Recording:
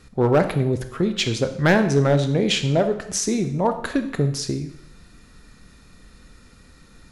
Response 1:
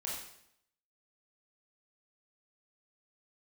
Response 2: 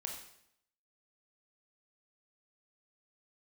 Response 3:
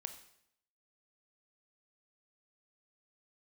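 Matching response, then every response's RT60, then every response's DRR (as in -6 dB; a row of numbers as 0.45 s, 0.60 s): 3; 0.75 s, 0.75 s, 0.75 s; -5.0 dB, 1.0 dB, 8.0 dB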